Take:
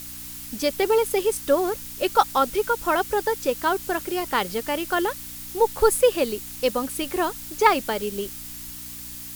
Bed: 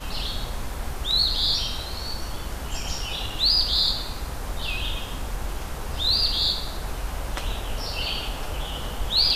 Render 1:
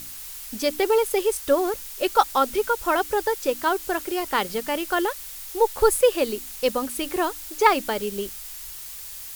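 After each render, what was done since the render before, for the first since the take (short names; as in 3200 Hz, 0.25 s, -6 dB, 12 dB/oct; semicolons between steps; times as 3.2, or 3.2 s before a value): de-hum 60 Hz, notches 5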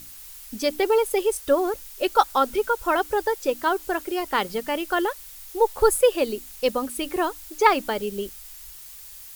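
denoiser 6 dB, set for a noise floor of -38 dBFS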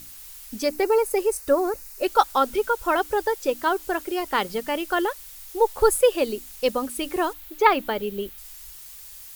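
0.64–2.06 bell 3300 Hz -14.5 dB 0.3 oct; 7.33–8.38 band shelf 7000 Hz -8.5 dB 1.3 oct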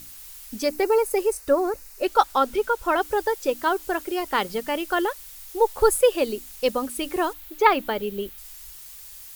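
1.33–3.01 high shelf 6500 Hz -4.5 dB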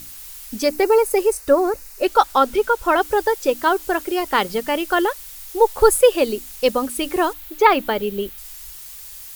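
gain +5 dB; limiter -1 dBFS, peak gain reduction 2.5 dB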